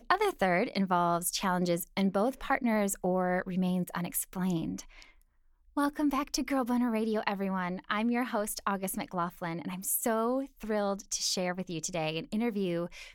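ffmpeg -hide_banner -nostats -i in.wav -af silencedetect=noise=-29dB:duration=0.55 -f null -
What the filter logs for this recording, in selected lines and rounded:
silence_start: 4.79
silence_end: 5.77 | silence_duration: 0.98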